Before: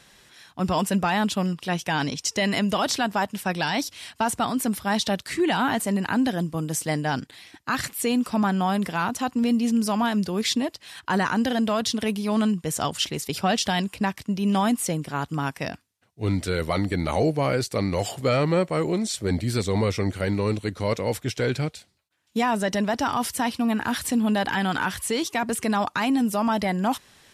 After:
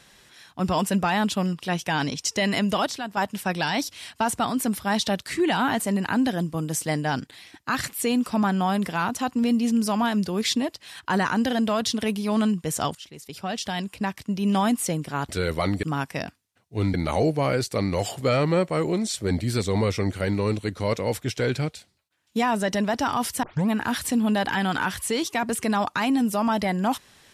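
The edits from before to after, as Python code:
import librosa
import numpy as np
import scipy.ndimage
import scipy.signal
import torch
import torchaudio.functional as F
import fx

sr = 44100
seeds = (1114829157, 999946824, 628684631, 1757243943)

y = fx.edit(x, sr, fx.clip_gain(start_s=2.86, length_s=0.31, db=-7.5),
    fx.fade_in_from(start_s=12.95, length_s=1.53, floor_db=-20.0),
    fx.move(start_s=16.4, length_s=0.54, to_s=15.29),
    fx.tape_start(start_s=23.43, length_s=0.25), tone=tone)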